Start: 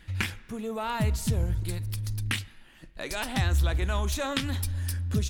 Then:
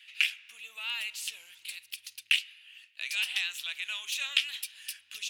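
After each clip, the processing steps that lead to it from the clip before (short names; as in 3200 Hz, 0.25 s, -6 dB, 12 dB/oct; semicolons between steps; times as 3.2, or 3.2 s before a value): resonant high-pass 2700 Hz, resonance Q 5; gain -3 dB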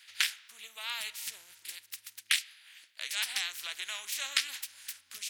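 spectral limiter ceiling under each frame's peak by 21 dB; gain -2 dB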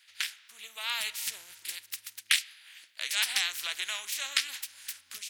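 AGC gain up to 10 dB; gain -5 dB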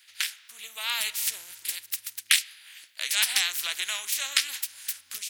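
high shelf 7800 Hz +7.5 dB; gain +2.5 dB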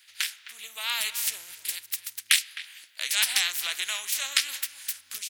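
speakerphone echo 0.26 s, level -14 dB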